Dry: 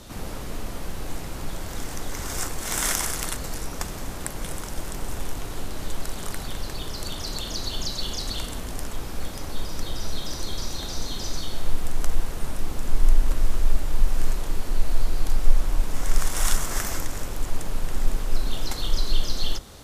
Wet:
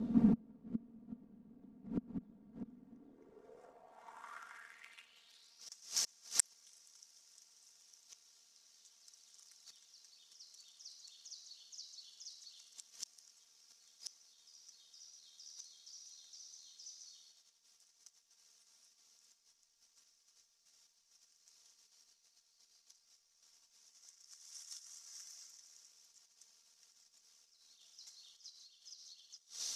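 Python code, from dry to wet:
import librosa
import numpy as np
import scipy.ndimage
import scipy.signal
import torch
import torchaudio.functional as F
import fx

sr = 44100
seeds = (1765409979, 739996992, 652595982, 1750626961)

p1 = fx.gate_flip(x, sr, shuts_db=-22.0, range_db=-39)
p2 = fx.over_compress(p1, sr, threshold_db=-58.0, ratio=-0.5)
p3 = p1 + F.gain(torch.from_numpy(p2), -2.5).numpy()
p4 = fx.stretch_grains(p3, sr, factor=1.5, grain_ms=26.0)
p5 = fx.filter_sweep_bandpass(p4, sr, from_hz=230.0, to_hz=5700.0, start_s=2.86, end_s=5.72, q=4.4)
y = F.gain(torch.from_numpy(p5), 17.0).numpy()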